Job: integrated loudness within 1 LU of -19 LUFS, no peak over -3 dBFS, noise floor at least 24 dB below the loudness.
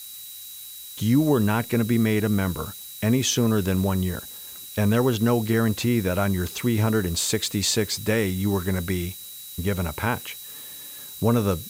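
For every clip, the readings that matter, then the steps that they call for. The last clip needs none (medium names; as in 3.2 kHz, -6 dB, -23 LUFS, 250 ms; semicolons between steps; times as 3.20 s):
steady tone 3.9 kHz; tone level -44 dBFS; noise floor -40 dBFS; noise floor target -48 dBFS; loudness -23.5 LUFS; peak level -8.5 dBFS; loudness target -19.0 LUFS
-> band-stop 3.9 kHz, Q 30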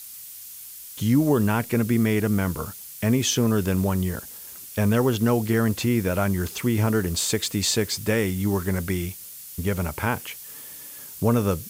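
steady tone not found; noise floor -41 dBFS; noise floor target -48 dBFS
-> noise reduction 7 dB, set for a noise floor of -41 dBFS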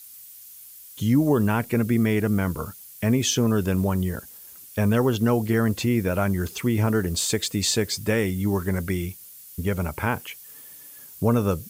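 noise floor -45 dBFS; noise floor target -48 dBFS
-> noise reduction 6 dB, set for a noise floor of -45 dBFS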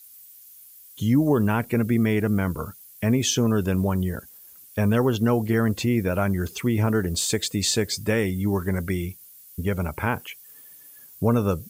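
noise floor -48 dBFS; loudness -24.0 LUFS; peak level -9.0 dBFS; loudness target -19.0 LUFS
-> trim +5 dB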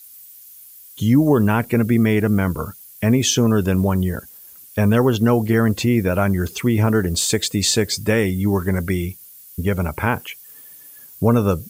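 loudness -19.0 LUFS; peak level -4.0 dBFS; noise floor -43 dBFS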